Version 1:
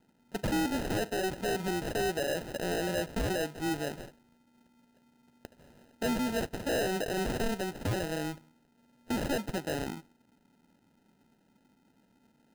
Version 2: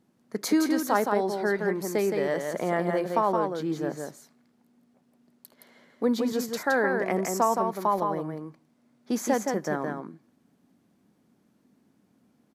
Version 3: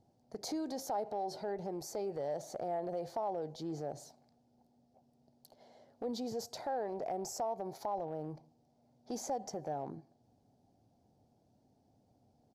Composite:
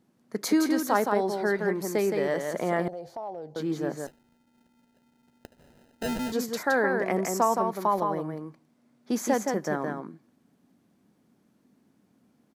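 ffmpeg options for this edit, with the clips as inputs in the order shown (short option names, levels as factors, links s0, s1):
-filter_complex "[1:a]asplit=3[s0][s1][s2];[s0]atrim=end=2.882[s3];[2:a]atrim=start=2.878:end=3.562[s4];[s1]atrim=start=3.558:end=4.072[s5];[0:a]atrim=start=4.068:end=6.322[s6];[s2]atrim=start=6.318[s7];[s3][s4]acrossfade=d=0.004:c1=hsin:c2=hsin[s8];[s8][s5]acrossfade=d=0.004:c1=hsin:c2=hsin[s9];[s9][s6]acrossfade=d=0.004:c1=hsin:c2=hsin[s10];[s10][s7]acrossfade=d=0.004:c1=hsin:c2=hsin"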